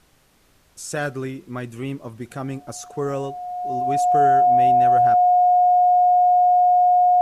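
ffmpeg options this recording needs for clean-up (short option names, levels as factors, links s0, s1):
-af "bandreject=f=720:w=30,agate=range=0.0891:threshold=0.00398"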